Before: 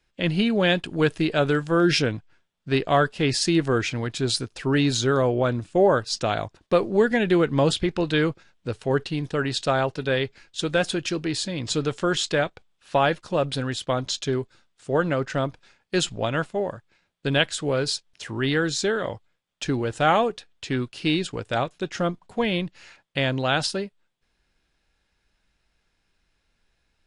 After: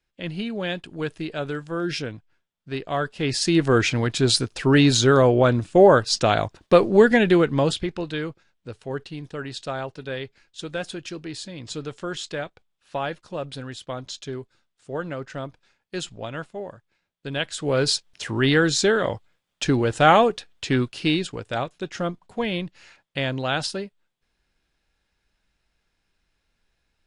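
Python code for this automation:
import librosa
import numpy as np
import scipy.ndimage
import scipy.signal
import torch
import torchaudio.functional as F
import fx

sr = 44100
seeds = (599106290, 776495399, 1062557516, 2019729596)

y = fx.gain(x, sr, db=fx.line((2.84, -7.5), (3.81, 5.0), (7.13, 5.0), (8.24, -7.5), (17.32, -7.5), (17.85, 4.5), (20.82, 4.5), (21.39, -2.0)))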